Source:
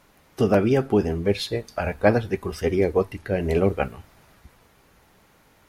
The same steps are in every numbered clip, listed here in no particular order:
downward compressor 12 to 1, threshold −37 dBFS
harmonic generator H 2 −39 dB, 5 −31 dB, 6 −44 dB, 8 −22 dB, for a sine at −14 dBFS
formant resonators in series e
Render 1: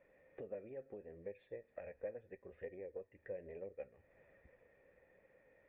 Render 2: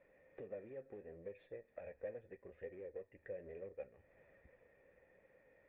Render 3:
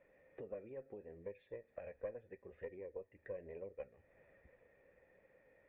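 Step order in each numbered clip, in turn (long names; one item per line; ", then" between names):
downward compressor, then harmonic generator, then formant resonators in series
harmonic generator, then downward compressor, then formant resonators in series
downward compressor, then formant resonators in series, then harmonic generator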